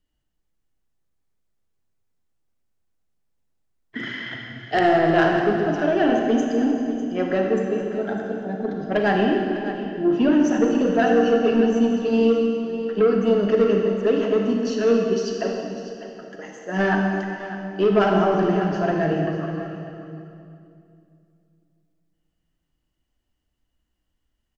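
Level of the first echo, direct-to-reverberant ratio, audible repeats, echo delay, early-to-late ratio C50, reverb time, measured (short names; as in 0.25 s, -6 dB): -13.0 dB, 0.5 dB, 1, 0.6 s, 1.5 dB, 2.6 s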